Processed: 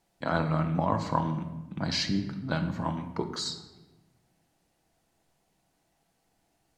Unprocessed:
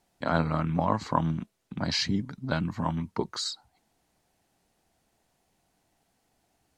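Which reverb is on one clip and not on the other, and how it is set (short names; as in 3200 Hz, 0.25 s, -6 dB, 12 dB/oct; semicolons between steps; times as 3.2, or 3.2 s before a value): shoebox room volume 650 m³, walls mixed, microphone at 0.68 m; gain -2 dB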